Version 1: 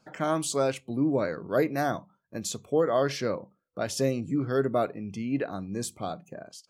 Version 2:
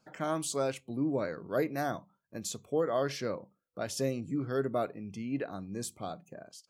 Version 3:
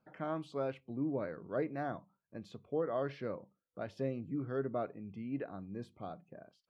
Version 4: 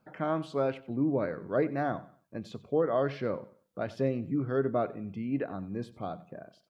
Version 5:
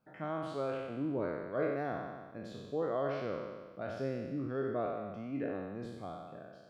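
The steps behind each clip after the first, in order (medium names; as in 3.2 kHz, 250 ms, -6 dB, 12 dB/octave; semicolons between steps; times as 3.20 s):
treble shelf 9.4 kHz +4 dB; trim -5.5 dB
distance through air 390 m; trim -4 dB
feedback delay 93 ms, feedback 31%, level -18 dB; trim +7.5 dB
spectral sustain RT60 1.44 s; trim -9 dB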